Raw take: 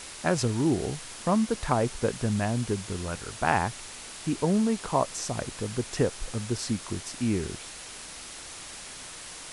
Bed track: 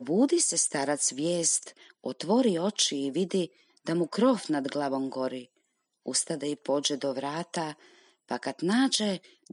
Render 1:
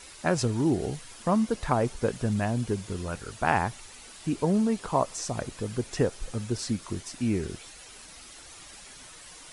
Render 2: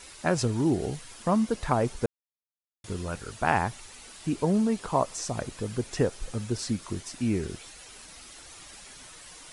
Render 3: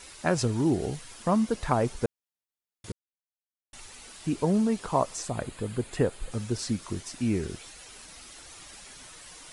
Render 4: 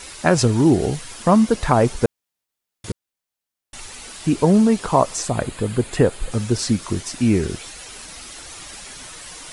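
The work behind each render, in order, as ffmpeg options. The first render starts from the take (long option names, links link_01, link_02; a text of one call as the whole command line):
ffmpeg -i in.wav -af "afftdn=noise_reduction=9:noise_floor=-43" out.wav
ffmpeg -i in.wav -filter_complex "[0:a]asplit=3[link_01][link_02][link_03];[link_01]atrim=end=2.06,asetpts=PTS-STARTPTS,afade=type=out:start_time=2.056:duration=0.004:curve=hsin[link_04];[link_02]atrim=start=2.06:end=2.84,asetpts=PTS-STARTPTS,volume=0[link_05];[link_03]atrim=start=2.84,asetpts=PTS-STARTPTS,afade=type=in:duration=0.004:curve=hsin[link_06];[link_04][link_05][link_06]concat=n=3:v=0:a=1" out.wav
ffmpeg -i in.wav -filter_complex "[0:a]asettb=1/sr,asplit=3[link_01][link_02][link_03];[link_01]atrim=end=5.224[link_04];[link_02]atrim=start=5.22:end=6.32,asetpts=PTS-STARTPTS,afade=type=in:duration=0.004:curve=qsin,afade=type=out:start_time=1.096:duration=0.004:curve=qsin,equalizer=frequency=5700:width=3.7:gain=-13.5[link_05];[link_03]atrim=start=6.316[link_06];[link_04][link_05]acrossfade=duration=0.004:curve1=hsin:curve2=qsin[link_07];[link_07][link_06]acrossfade=duration=0.004:curve1=qsin:curve2=hsin,asplit=3[link_08][link_09][link_10];[link_08]atrim=end=2.92,asetpts=PTS-STARTPTS,afade=type=out:start_time=2.916:duration=0.004:curve=hsin[link_11];[link_09]atrim=start=2.92:end=3.73,asetpts=PTS-STARTPTS,volume=0[link_12];[link_10]atrim=start=3.73,asetpts=PTS-STARTPTS,afade=type=in:duration=0.004:curve=hsin[link_13];[link_11][link_12][link_13]concat=n=3:v=0:a=1" out.wav
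ffmpeg -i in.wav -af "volume=10dB,alimiter=limit=-3dB:level=0:latency=1" out.wav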